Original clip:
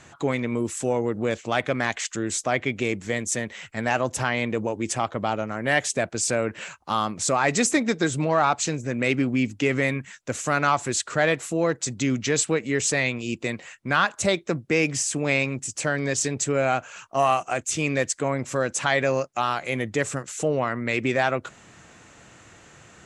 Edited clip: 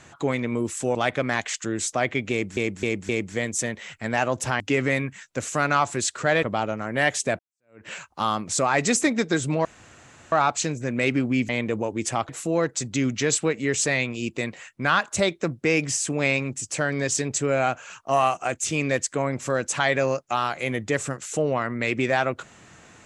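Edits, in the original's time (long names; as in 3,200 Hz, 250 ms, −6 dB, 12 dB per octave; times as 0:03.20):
0:00.95–0:01.46: remove
0:02.82–0:03.08: repeat, 4 plays
0:04.33–0:05.13: swap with 0:09.52–0:11.35
0:06.09–0:06.57: fade in exponential
0:08.35: splice in room tone 0.67 s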